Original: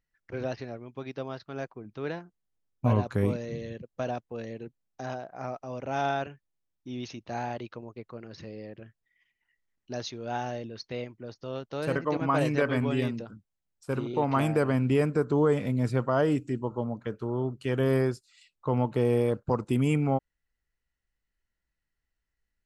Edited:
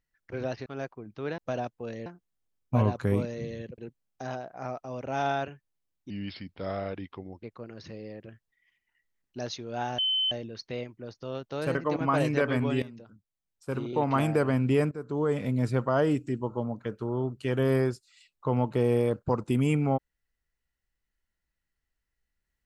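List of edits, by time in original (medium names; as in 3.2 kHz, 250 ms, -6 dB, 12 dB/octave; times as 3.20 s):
0.66–1.45 s: delete
3.89–4.57 s: move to 2.17 s
6.89–7.97 s: speed 81%
10.52 s: add tone 3.06 kHz -23.5 dBFS 0.33 s
13.03–14.19 s: fade in, from -15.5 dB
15.12–15.71 s: fade in, from -16.5 dB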